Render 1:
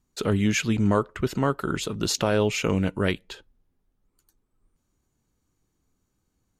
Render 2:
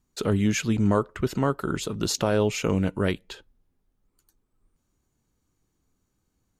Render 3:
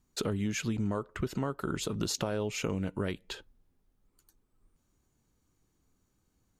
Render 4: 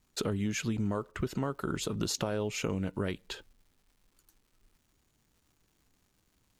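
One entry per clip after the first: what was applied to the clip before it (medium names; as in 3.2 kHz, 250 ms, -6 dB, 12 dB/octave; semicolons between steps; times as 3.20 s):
dynamic bell 2.5 kHz, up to -4 dB, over -38 dBFS, Q 0.84
compression 6:1, threshold -29 dBFS, peak gain reduction 11.5 dB
crackle 400 per s -59 dBFS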